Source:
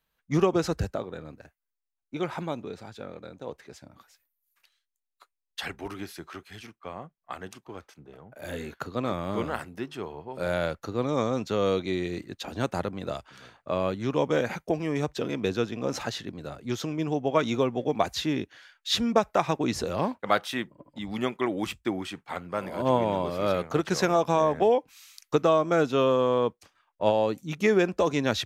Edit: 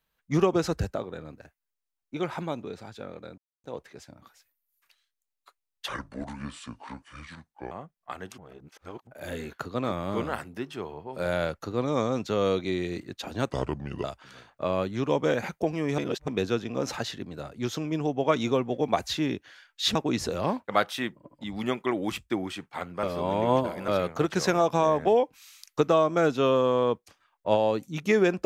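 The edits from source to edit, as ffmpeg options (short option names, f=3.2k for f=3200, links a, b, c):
-filter_complex "[0:a]asplit=13[a][b][c][d][e][f][g][h][i][j][k][l][m];[a]atrim=end=3.38,asetpts=PTS-STARTPTS,afade=t=out:st=3.376:d=0.004:c=hsin,apad=pad_dur=0.26[n];[b]atrim=start=3.38:end=5.624,asetpts=PTS-STARTPTS,afade=t=in:d=0.004:c=hsin[o];[c]atrim=start=5.62:end=6.92,asetpts=PTS-STARTPTS,asetrate=31311,aresample=44100,atrim=end_sample=80746,asetpts=PTS-STARTPTS[p];[d]atrim=start=6.916:end=7.592[q];[e]atrim=start=7.588:end=8.282,asetpts=PTS-STARTPTS,areverse[r];[f]atrim=start=8.278:end=12.714[s];[g]atrim=start=12.71:end=13.11,asetpts=PTS-STARTPTS,asetrate=32634,aresample=44100[t];[h]atrim=start=13.106:end=15.052[u];[i]atrim=start=15.048:end=15.352,asetpts=PTS-STARTPTS,areverse[v];[j]atrim=start=15.348:end=19.022[w];[k]atrim=start=19.498:end=22.582[x];[l]atrim=start=22.578:end=23.432,asetpts=PTS-STARTPTS,areverse[y];[m]atrim=start=23.428[z];[n][o]concat=n=2:v=0:a=1[aa];[aa][p]acrossfade=d=0.004:c1=hsin:c2=hsin[ab];[ab][q]acrossfade=d=0.004:c1=hsin:c2=hsin[ac];[ac][r]acrossfade=d=0.004:c1=hsin:c2=hsin[ad];[ad][s]acrossfade=d=0.004:c1=hsin:c2=hsin[ae];[ae][t]acrossfade=d=0.004:c1=hsin:c2=hsin[af];[af][u]acrossfade=d=0.004:c1=hsin:c2=hsin[ag];[ag][v]acrossfade=d=0.004:c1=hsin:c2=hsin[ah];[ah][w]acrossfade=d=0.004:c1=hsin:c2=hsin[ai];[ai][x]acrossfade=d=0.004:c1=hsin:c2=hsin[aj];[aj][y]acrossfade=d=0.004:c1=hsin:c2=hsin[ak];[ak][z]acrossfade=d=0.004:c1=hsin:c2=hsin"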